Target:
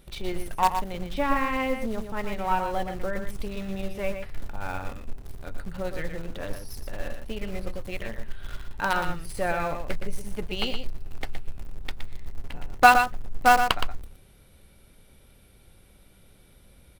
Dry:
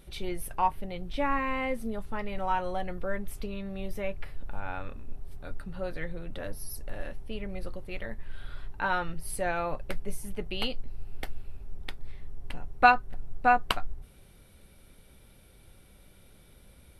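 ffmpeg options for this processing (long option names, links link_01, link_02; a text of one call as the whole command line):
ffmpeg -i in.wav -filter_complex "[0:a]acrossover=split=8100[link_01][link_02];[link_02]acompressor=threshold=-57dB:ratio=4:attack=1:release=60[link_03];[link_01][link_03]amix=inputs=2:normalize=0,asplit=2[link_04][link_05];[link_05]acrusher=bits=4:dc=4:mix=0:aa=0.000001,volume=-4dB[link_06];[link_04][link_06]amix=inputs=2:normalize=0,aecho=1:1:118:0.422" out.wav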